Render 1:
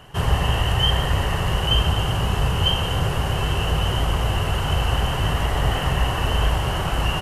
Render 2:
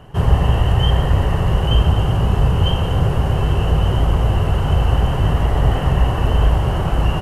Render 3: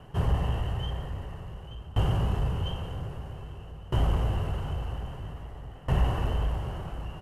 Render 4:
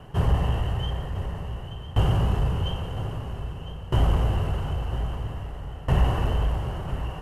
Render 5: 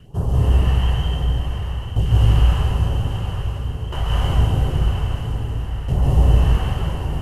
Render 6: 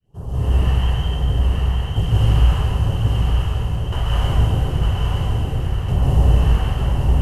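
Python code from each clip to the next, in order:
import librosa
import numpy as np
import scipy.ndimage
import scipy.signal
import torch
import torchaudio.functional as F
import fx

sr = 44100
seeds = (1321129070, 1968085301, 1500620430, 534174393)

y1 = fx.tilt_shelf(x, sr, db=6.5, hz=1100.0)
y2 = 10.0 ** (-5.5 / 20.0) * np.tanh(y1 / 10.0 ** (-5.5 / 20.0))
y2 = fx.tremolo_decay(y2, sr, direction='decaying', hz=0.51, depth_db=22)
y2 = y2 * 10.0 ** (-6.5 / 20.0)
y3 = y2 + 10.0 ** (-12.5 / 20.0) * np.pad(y2, (int(1004 * sr / 1000.0), 0))[:len(y2)]
y3 = y3 * 10.0 ** (4.0 / 20.0)
y4 = fx.phaser_stages(y3, sr, stages=2, low_hz=210.0, high_hz=2300.0, hz=1.2, feedback_pct=25)
y4 = fx.rev_plate(y4, sr, seeds[0], rt60_s=2.6, hf_ratio=0.95, predelay_ms=120, drr_db=-6.5)
y5 = fx.fade_in_head(y4, sr, length_s=0.63)
y5 = y5 + 10.0 ** (-4.5 / 20.0) * np.pad(y5, (int(908 * sr / 1000.0), 0))[:len(y5)]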